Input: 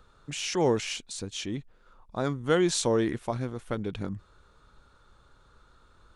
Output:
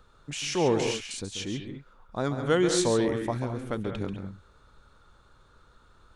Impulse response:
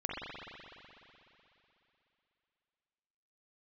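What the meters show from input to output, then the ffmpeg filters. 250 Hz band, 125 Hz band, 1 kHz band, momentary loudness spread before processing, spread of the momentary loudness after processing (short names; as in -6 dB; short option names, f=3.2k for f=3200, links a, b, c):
+1.0 dB, +1.0 dB, +1.0 dB, 14 LU, 16 LU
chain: -filter_complex "[0:a]asplit=2[a][b];[1:a]atrim=start_sample=2205,atrim=end_sample=4410,adelay=138[c];[b][c]afir=irnorm=-1:irlink=0,volume=-7dB[d];[a][d]amix=inputs=2:normalize=0"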